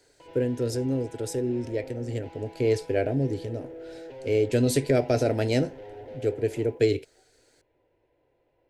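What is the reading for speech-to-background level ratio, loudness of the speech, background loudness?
17.5 dB, -27.0 LUFS, -44.5 LUFS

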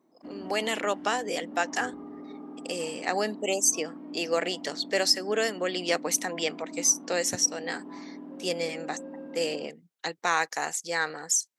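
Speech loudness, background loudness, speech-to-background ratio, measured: -28.5 LUFS, -42.5 LUFS, 14.0 dB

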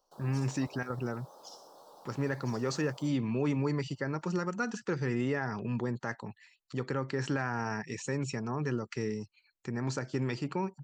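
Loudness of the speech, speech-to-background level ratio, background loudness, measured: -34.0 LUFS, 19.0 dB, -53.0 LUFS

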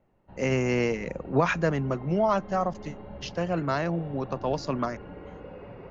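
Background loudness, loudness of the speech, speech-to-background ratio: -44.0 LUFS, -28.0 LUFS, 16.0 dB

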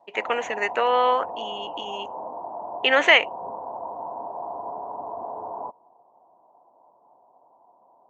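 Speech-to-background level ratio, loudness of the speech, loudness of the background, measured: 14.0 dB, -20.5 LUFS, -34.5 LUFS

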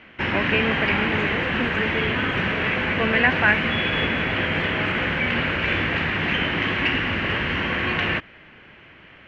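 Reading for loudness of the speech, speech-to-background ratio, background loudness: -24.5 LUFS, -2.5 dB, -22.0 LUFS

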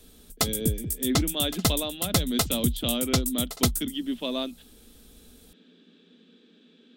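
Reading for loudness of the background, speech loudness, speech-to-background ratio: -27.5 LUFS, -30.5 LUFS, -3.0 dB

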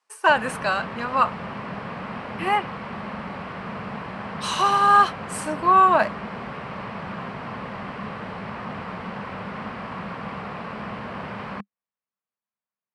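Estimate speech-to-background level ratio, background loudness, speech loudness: 13.0 dB, -33.5 LUFS, -20.5 LUFS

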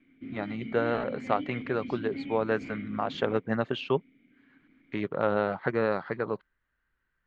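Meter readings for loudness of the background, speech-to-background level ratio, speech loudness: -41.0 LUFS, 10.5 dB, -30.5 LUFS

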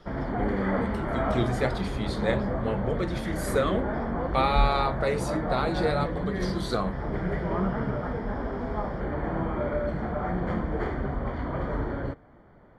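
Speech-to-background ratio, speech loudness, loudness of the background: 0.5 dB, -30.0 LUFS, -30.5 LUFS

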